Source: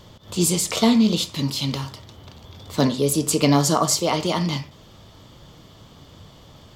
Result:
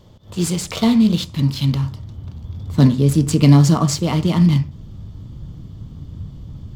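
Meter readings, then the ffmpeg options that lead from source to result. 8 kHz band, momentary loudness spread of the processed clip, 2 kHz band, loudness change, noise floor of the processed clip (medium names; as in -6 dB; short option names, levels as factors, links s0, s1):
-5.0 dB, 23 LU, -1.0 dB, +4.5 dB, -39 dBFS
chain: -filter_complex "[0:a]asubboost=boost=9:cutoff=200,asplit=2[s0][s1];[s1]adynamicsmooth=sensitivity=6.5:basefreq=630,volume=1.26[s2];[s0][s2]amix=inputs=2:normalize=0,volume=0.422"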